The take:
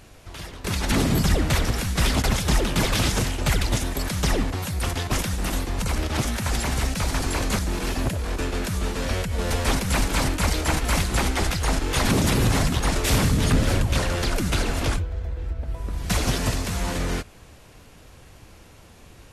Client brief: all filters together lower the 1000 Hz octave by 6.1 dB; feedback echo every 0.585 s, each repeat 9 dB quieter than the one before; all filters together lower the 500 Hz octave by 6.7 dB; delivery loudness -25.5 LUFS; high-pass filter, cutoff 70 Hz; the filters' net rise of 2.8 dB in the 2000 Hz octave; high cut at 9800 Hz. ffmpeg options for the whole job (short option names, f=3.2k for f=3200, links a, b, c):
-af "highpass=70,lowpass=9.8k,equalizer=f=500:t=o:g=-7,equalizer=f=1k:t=o:g=-8,equalizer=f=2k:t=o:g=6,aecho=1:1:585|1170|1755|2340:0.355|0.124|0.0435|0.0152,volume=-0.5dB"